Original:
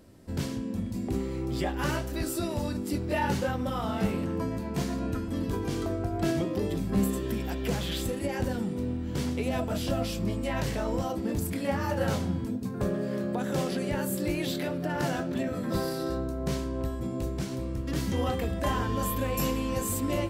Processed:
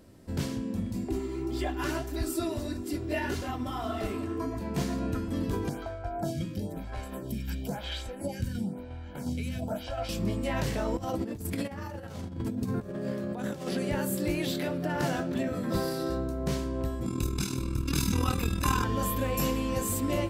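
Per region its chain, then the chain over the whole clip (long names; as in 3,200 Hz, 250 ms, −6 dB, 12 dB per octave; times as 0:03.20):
0:01.04–0:04.61: comb filter 2.9 ms, depth 84% + flanger 1.7 Hz, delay 0.5 ms, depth 9.9 ms, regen +55%
0:05.69–0:10.09: shaped tremolo saw down 2.8 Hz, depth 40% + comb filter 1.3 ms, depth 61% + phaser with staggered stages 1 Hz
0:10.97–0:13.69: parametric band 100 Hz +5 dB 0.47 octaves + compressor whose output falls as the input rises −33 dBFS, ratio −0.5
0:17.06–0:18.84: high-shelf EQ 2,200 Hz +10 dB + comb filter 0.8 ms, depth 100% + amplitude modulation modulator 40 Hz, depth 60%
whole clip: no processing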